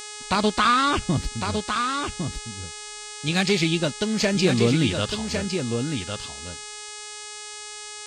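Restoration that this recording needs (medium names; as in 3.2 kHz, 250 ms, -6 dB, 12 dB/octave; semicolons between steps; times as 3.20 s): de-hum 420.2 Hz, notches 22; inverse comb 1106 ms -6 dB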